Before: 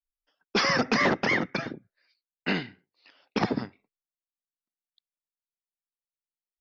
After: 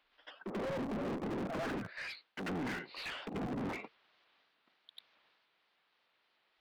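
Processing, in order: treble ducked by the level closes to 660 Hz, closed at -25 dBFS; steep low-pass 4200 Hz 36 dB/oct; treble ducked by the level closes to 320 Hz, closed at -25 dBFS; transient shaper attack +1 dB, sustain +5 dB; reverse; compressor 6:1, threshold -43 dBFS, peak gain reduction 20 dB; reverse; pre-echo 91 ms -15 dB; in parallel at -8 dB: companded quantiser 4-bit; on the sum: overdrive pedal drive 38 dB, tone 3000 Hz, clips at -28.5 dBFS; shaped vibrato saw up 3.3 Hz, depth 100 cents; gain -2.5 dB

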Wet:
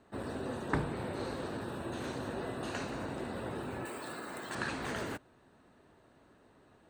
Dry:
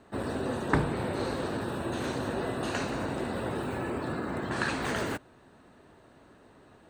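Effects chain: 3.85–4.55 RIAA curve recording; gain -6.5 dB

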